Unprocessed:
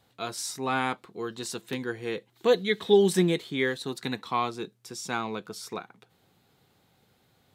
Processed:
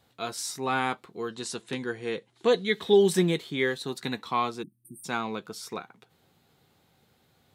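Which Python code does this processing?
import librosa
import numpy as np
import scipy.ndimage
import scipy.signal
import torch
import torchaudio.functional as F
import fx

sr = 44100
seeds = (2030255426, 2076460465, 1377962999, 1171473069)

y = fx.steep_lowpass(x, sr, hz=11000.0, slope=72, at=(1.31, 2.68))
y = fx.doubler(y, sr, ms=13.0, db=-13)
y = fx.spec_erase(y, sr, start_s=4.63, length_s=0.41, low_hz=350.0, high_hz=8400.0)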